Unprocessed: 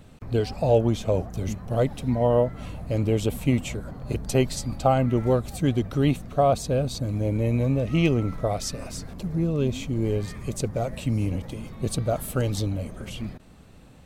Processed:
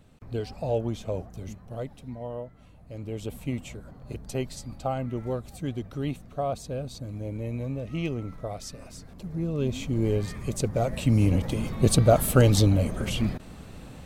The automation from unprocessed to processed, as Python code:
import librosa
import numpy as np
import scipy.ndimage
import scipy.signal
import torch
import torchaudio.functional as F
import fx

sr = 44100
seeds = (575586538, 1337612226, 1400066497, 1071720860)

y = fx.gain(x, sr, db=fx.line((1.13, -7.5), (2.7, -18.0), (3.31, -9.0), (9.04, -9.0), (9.94, 0.0), (10.6, 0.0), (11.61, 7.0)))